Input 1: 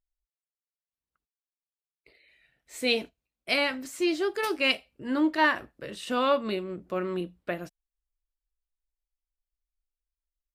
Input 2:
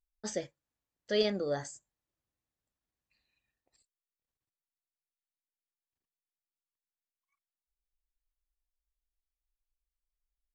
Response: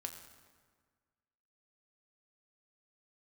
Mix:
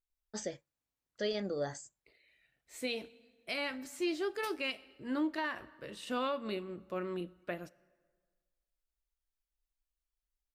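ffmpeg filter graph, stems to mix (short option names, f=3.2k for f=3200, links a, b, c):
-filter_complex "[0:a]volume=-8.5dB,asplit=2[a][b];[b]volume=-11.5dB[c];[1:a]adelay=100,volume=-2.5dB[d];[2:a]atrim=start_sample=2205[e];[c][e]afir=irnorm=-1:irlink=0[f];[a][d][f]amix=inputs=3:normalize=0,alimiter=level_in=1.5dB:limit=-24dB:level=0:latency=1:release=139,volume=-1.5dB"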